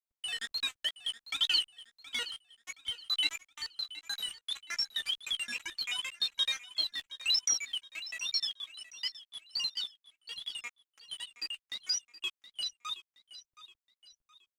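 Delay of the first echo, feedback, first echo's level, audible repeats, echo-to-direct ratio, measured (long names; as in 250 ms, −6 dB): 721 ms, 39%, −15.5 dB, 3, −15.0 dB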